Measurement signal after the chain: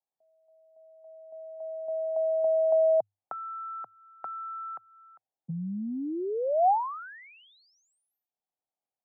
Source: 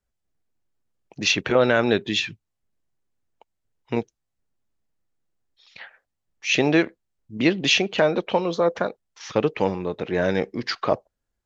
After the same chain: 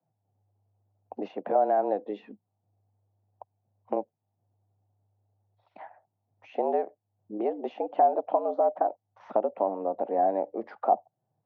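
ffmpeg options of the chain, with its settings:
-af "afreqshift=100,acompressor=threshold=0.0178:ratio=2.5,lowpass=f=760:t=q:w=4.9"

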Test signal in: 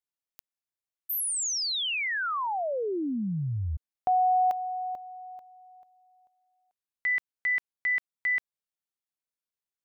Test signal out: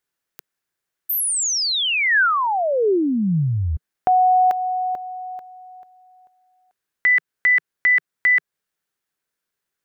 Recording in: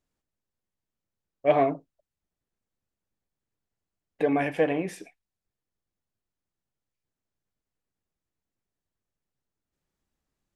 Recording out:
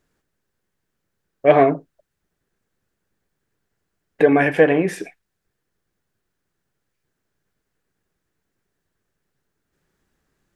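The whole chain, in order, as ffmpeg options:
-filter_complex "[0:a]equalizer=f=160:t=o:w=0.67:g=4,equalizer=f=400:t=o:w=0.67:g=6,equalizer=f=1600:t=o:w=0.67:g=8,asplit=2[s0][s1];[s1]acompressor=threshold=0.0224:ratio=6:attack=16:release=205:detection=rms,volume=0.75[s2];[s0][s2]amix=inputs=2:normalize=0,volume=1.78"

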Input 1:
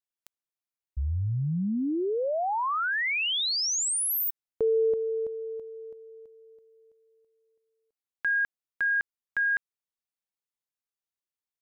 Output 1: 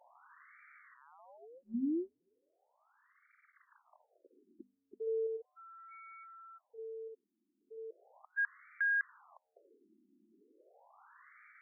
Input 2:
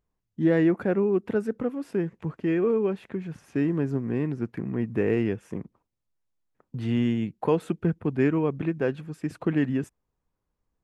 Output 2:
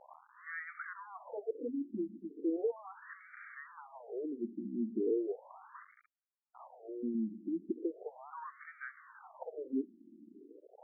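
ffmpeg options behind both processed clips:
-af "aeval=exprs='val(0)+0.5*0.0299*sgn(val(0))':c=same,bandreject=f=50:t=h:w=6,bandreject=f=100:t=h:w=6,bandreject=f=150:t=h:w=6,bandreject=f=200:t=h:w=6,bandreject=f=250:t=h:w=6,afftfilt=real='re*between(b*sr/1024,250*pow(1700/250,0.5+0.5*sin(2*PI*0.37*pts/sr))/1.41,250*pow(1700/250,0.5+0.5*sin(2*PI*0.37*pts/sr))*1.41)':imag='im*between(b*sr/1024,250*pow(1700/250,0.5+0.5*sin(2*PI*0.37*pts/sr))/1.41,250*pow(1700/250,0.5+0.5*sin(2*PI*0.37*pts/sr))*1.41)':win_size=1024:overlap=0.75,volume=0.422"

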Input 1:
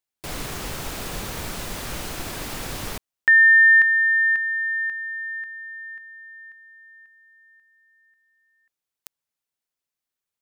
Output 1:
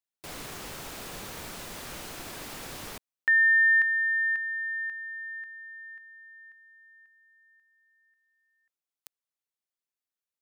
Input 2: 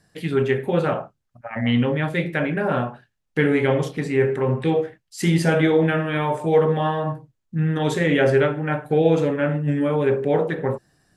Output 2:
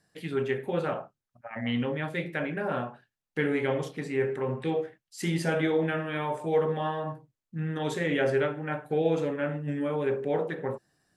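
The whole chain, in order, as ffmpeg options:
-af "lowshelf=f=120:g=-9,volume=0.422"

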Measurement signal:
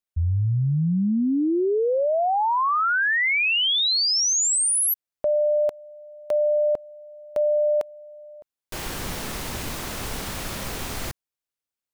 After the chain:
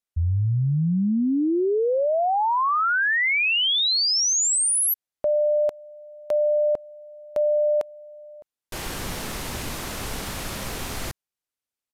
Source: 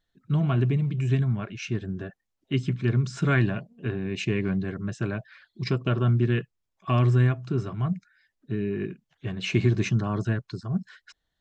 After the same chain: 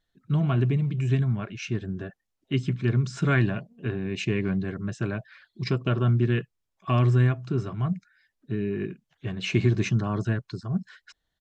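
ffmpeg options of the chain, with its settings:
-af "aresample=32000,aresample=44100"

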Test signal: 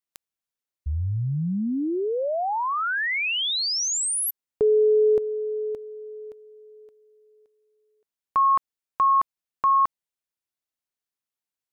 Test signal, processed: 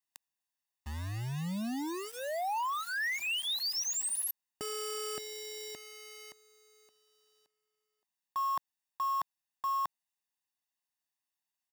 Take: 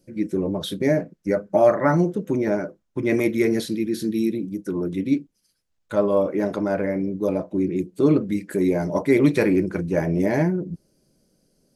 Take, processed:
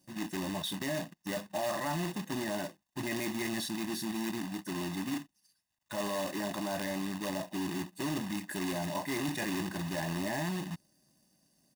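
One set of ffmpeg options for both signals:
-af "acrusher=bits=2:mode=log:mix=0:aa=0.000001,highpass=f=280:p=1,aecho=1:1:1.1:0.96,areverse,acompressor=threshold=0.0398:ratio=4:attack=4.4:release=27:knee=6:detection=rms,areverse,volume=0.562"

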